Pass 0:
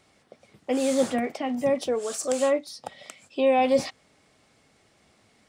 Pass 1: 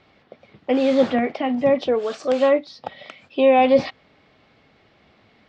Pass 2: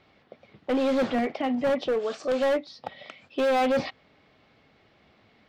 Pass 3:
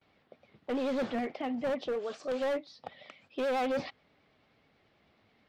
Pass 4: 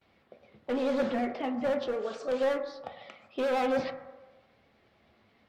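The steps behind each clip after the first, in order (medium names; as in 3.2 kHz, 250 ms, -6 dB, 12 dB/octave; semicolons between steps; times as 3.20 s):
low-pass 4 kHz 24 dB/octave; trim +6 dB
overload inside the chain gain 16.5 dB; trim -4 dB
gate with hold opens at -53 dBFS; vibrato 9.3 Hz 65 cents; trim -7.5 dB
reverberation RT60 1.2 s, pre-delay 7 ms, DRR 5 dB; trim +1.5 dB; Vorbis 96 kbps 44.1 kHz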